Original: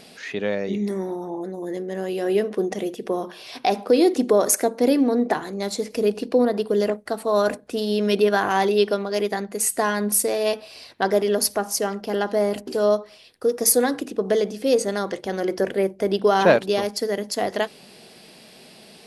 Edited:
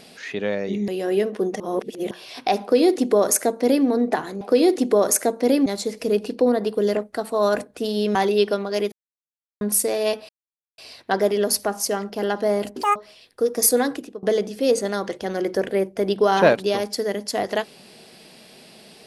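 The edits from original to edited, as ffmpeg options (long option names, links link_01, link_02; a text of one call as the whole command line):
ffmpeg -i in.wav -filter_complex "[0:a]asplit=13[link_01][link_02][link_03][link_04][link_05][link_06][link_07][link_08][link_09][link_10][link_11][link_12][link_13];[link_01]atrim=end=0.882[link_14];[link_02]atrim=start=2.058:end=2.782[link_15];[link_03]atrim=start=2.778:end=3.292,asetpts=PTS-STARTPTS,areverse[link_16];[link_04]atrim=start=3.288:end=5.592[link_17];[link_05]atrim=start=3.788:end=5.042[link_18];[link_06]atrim=start=5.588:end=8.082[link_19];[link_07]atrim=start=8.548:end=9.32,asetpts=PTS-STARTPTS,afade=type=out:start_time=0.768:duration=0.004:curve=hsin[link_20];[link_08]atrim=start=9.32:end=10.01,asetpts=PTS-STARTPTS,volume=0[link_21];[link_09]atrim=start=10.01:end=10.69,asetpts=PTS-STARTPTS,afade=type=in:duration=0.004:curve=hsin,afade=type=out:start_time=0.676:duration=0.004:curve=hsin,apad=pad_dur=0.49[link_22];[link_10]atrim=start=10.69:end=12.744,asetpts=PTS-STARTPTS,afade=type=in:duration=0.004:curve=hsin[link_23];[link_11]atrim=start=12.74:end=12.99,asetpts=PTS-STARTPTS,asetrate=86877,aresample=44100,atrim=end_sample=5596,asetpts=PTS-STARTPTS[link_24];[link_12]atrim=start=12.986:end=14.26,asetpts=PTS-STARTPTS,afade=type=out:start_time=0.954:duration=0.32:silence=0.0794328[link_25];[link_13]atrim=start=14.26,asetpts=PTS-STARTPTS,afade=type=in:duration=0.004:curve=hsin:silence=0.0794328[link_26];[link_14][link_15]acrossfade=duration=0.004:curve1=hsin:curve2=hsin[link_27];[link_27][link_16]acrossfade=duration=0.004:curve1=hsin:curve2=hsin[link_28];[link_28][link_17]acrossfade=duration=0.004:curve1=hsin:curve2=hsin[link_29];[link_29][link_18]acrossfade=duration=0.004:curve1=hsin:curve2=hsin[link_30];[link_30][link_19]acrossfade=duration=0.004:curve1=hsin:curve2=hsin[link_31];[link_20][link_21][link_22][link_23]concat=n=4:v=0:a=1[link_32];[link_31][link_32]acrossfade=duration=0.004:curve1=hsin:curve2=hsin[link_33];[link_33][link_24]acrossfade=duration=0.004:curve1=hsin:curve2=hsin[link_34];[link_25][link_26]concat=n=2:v=0:a=1[link_35];[link_34][link_35]acrossfade=duration=0.004:curve1=hsin:curve2=hsin" out.wav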